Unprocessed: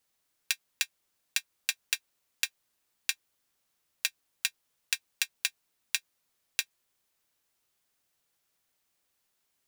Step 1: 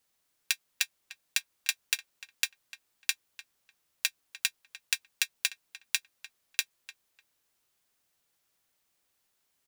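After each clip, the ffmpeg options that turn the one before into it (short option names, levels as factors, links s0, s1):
-filter_complex "[0:a]asplit=2[s0][s1];[s1]adelay=299,lowpass=f=2700:p=1,volume=0.2,asplit=2[s2][s3];[s3]adelay=299,lowpass=f=2700:p=1,volume=0.21[s4];[s0][s2][s4]amix=inputs=3:normalize=0,volume=1.12"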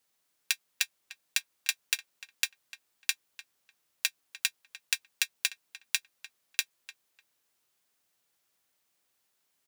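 -af "highpass=f=120:p=1"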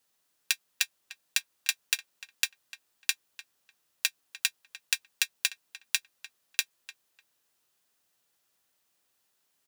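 -af "bandreject=f=2200:w=16,volume=1.19"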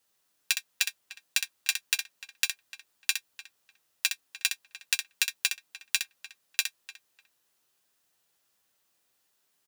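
-af "aecho=1:1:10|63:0.316|0.447"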